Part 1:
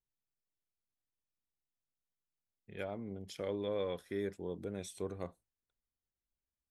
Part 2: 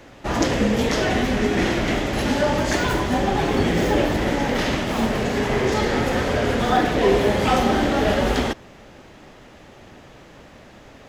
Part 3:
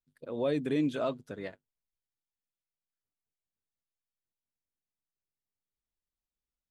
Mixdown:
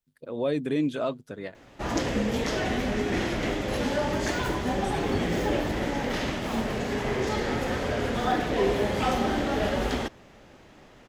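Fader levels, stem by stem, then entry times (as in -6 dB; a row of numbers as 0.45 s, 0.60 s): +1.5 dB, -7.0 dB, +3.0 dB; 0.00 s, 1.55 s, 0.00 s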